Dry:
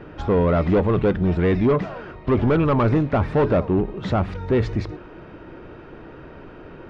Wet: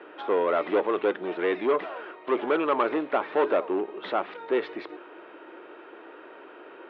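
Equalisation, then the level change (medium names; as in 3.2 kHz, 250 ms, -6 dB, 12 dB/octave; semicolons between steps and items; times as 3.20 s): Chebyshev band-pass 330–3500 Hz, order 3; bass shelf 450 Hz -7 dB; 0.0 dB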